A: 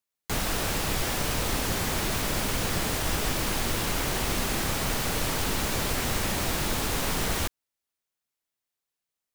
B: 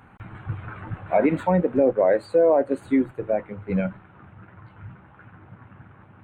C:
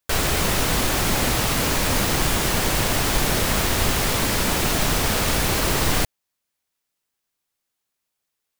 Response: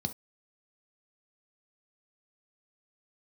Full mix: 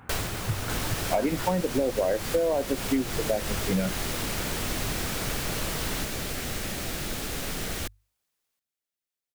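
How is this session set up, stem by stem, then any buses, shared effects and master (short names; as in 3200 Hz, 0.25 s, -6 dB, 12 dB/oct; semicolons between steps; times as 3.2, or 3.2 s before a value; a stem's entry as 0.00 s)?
-4.0 dB, 0.40 s, no send, bell 970 Hz -8 dB 0.47 oct; notches 50/100 Hz
+1.0 dB, 0.00 s, no send, dry
-1.0 dB, 0.00 s, no send, auto duck -12 dB, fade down 0.30 s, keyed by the second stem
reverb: off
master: compressor 6:1, threshold -22 dBFS, peak gain reduction 9 dB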